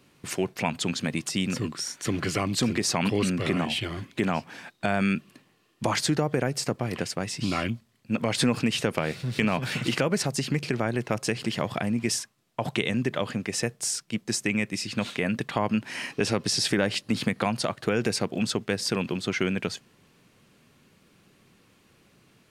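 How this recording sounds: noise floor -63 dBFS; spectral tilt -4.0 dB/octave

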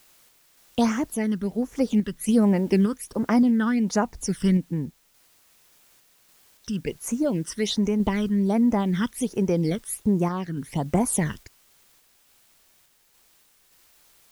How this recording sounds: phasing stages 12, 1.3 Hz, lowest notch 720–4000 Hz; a quantiser's noise floor 10-bit, dither triangular; random-step tremolo

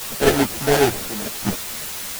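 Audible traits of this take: aliases and images of a low sample rate 1.1 kHz, jitter 20%; random-step tremolo 3.7 Hz, depth 85%; a quantiser's noise floor 6-bit, dither triangular; a shimmering, thickened sound

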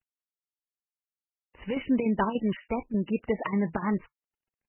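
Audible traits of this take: a quantiser's noise floor 12-bit, dither none; chopped level 3.4 Hz, depth 65%, duty 80%; MP3

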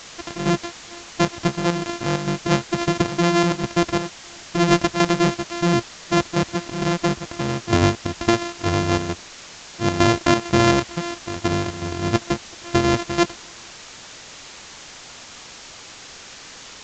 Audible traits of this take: a buzz of ramps at a fixed pitch in blocks of 128 samples; chopped level 2.2 Hz, depth 60%, duty 75%; a quantiser's noise floor 6-bit, dither triangular; µ-law

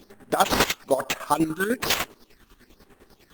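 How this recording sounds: phasing stages 8, 1.1 Hz, lowest notch 590–4800 Hz; aliases and images of a low sample rate 10 kHz, jitter 0%; chopped level 10 Hz, depth 65%, duty 40%; Opus

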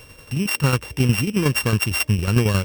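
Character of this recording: a buzz of ramps at a fixed pitch in blocks of 16 samples; tremolo saw down 11 Hz, depth 60%

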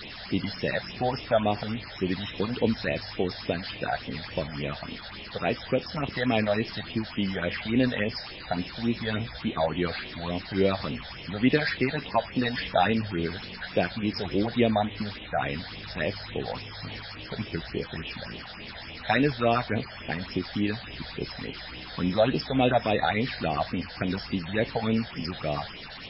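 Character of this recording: a quantiser's noise floor 6-bit, dither triangular; phasing stages 8, 3.5 Hz, lowest notch 310–1500 Hz; MP3

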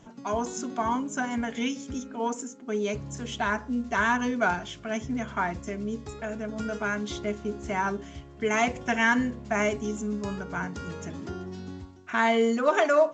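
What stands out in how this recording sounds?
A-law

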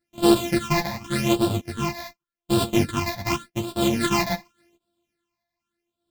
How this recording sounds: a buzz of ramps at a fixed pitch in blocks of 128 samples; phasing stages 8, 0.87 Hz, lowest notch 380–2000 Hz; random-step tremolo; a shimmering, thickened sound

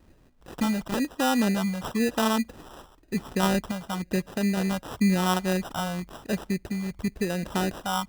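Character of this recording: phasing stages 4, 0.98 Hz, lowest notch 340–3300 Hz; random-step tremolo; aliases and images of a low sample rate 2.2 kHz, jitter 0%

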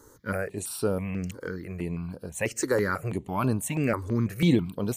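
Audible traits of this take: notches that jump at a steady rate 6.1 Hz 680–7200 Hz

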